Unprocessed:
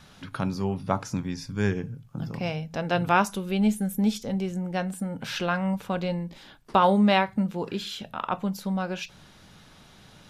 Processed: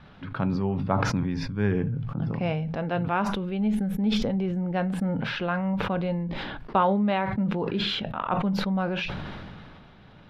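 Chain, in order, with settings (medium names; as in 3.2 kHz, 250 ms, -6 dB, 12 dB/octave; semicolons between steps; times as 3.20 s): gain riding within 4 dB 0.5 s; distance through air 370 m; decay stretcher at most 24 dB/s; trim -1 dB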